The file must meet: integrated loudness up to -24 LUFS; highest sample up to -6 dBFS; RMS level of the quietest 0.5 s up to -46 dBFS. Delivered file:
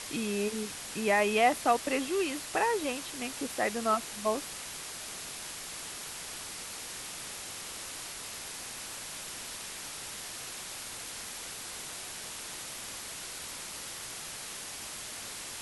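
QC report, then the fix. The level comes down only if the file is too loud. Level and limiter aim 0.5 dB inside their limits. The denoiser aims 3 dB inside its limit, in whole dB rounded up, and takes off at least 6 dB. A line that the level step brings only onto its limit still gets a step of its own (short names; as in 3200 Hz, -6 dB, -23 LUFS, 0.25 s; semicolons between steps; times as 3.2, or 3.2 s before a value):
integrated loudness -34.0 LUFS: OK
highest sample -12.5 dBFS: OK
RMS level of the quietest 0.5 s -42 dBFS: fail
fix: denoiser 7 dB, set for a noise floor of -42 dBFS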